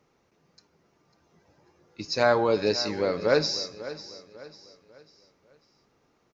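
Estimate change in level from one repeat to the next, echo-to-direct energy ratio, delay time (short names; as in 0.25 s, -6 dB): -8.0 dB, -14.5 dB, 0.547 s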